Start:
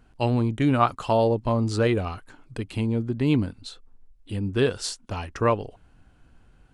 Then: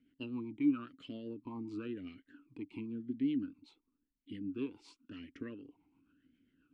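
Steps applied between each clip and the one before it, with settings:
downward compressor 2 to 1, threshold −30 dBFS, peak gain reduction 9 dB
rotating-speaker cabinet horn 7.5 Hz
formant filter swept between two vowels i-u 0.94 Hz
level +2.5 dB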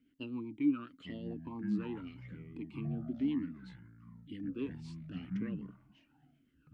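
delay with pitch and tempo change per echo 770 ms, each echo −6 semitones, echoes 2, each echo −6 dB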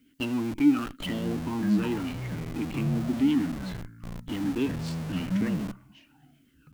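high-shelf EQ 3,000 Hz +9 dB
single-tap delay 78 ms −19 dB
in parallel at −7 dB: comparator with hysteresis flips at −49 dBFS
on the sum: level +8.5 dB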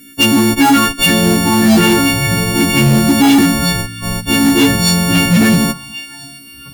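every partial snapped to a pitch grid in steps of 4 semitones
delay with a high-pass on its return 669 ms, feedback 51%, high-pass 2,200 Hz, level −20 dB
sine wavefolder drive 10 dB, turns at −10.5 dBFS
level +5.5 dB

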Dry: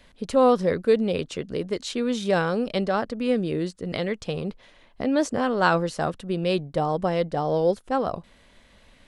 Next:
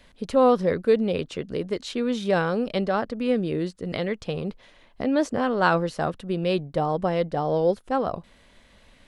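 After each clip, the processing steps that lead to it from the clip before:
dynamic equaliser 7,700 Hz, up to −6 dB, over −51 dBFS, Q 0.85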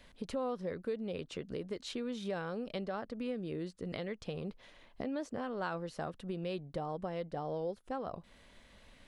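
downward compressor 3 to 1, threshold −34 dBFS, peak gain reduction 14.5 dB
level −4.5 dB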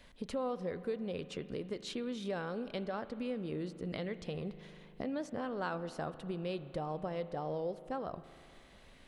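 spring reverb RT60 2.9 s, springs 39 ms, chirp 45 ms, DRR 13 dB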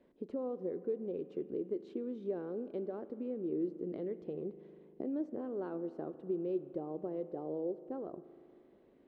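resonant band-pass 350 Hz, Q 3.6
level +7.5 dB

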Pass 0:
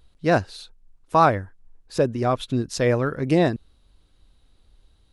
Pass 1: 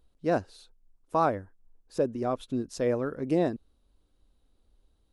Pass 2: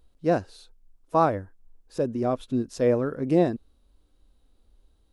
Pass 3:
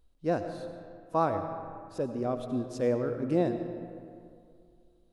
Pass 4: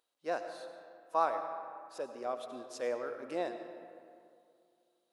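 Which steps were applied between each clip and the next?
octave-band graphic EQ 125/250/500/2,000/4,000 Hz −5/+4/+3/−4/−4 dB; level −9 dB
harmonic and percussive parts rebalanced harmonic +6 dB
comb and all-pass reverb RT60 2.3 s, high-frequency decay 0.55×, pre-delay 55 ms, DRR 7.5 dB; level −6 dB
high-pass filter 710 Hz 12 dB per octave

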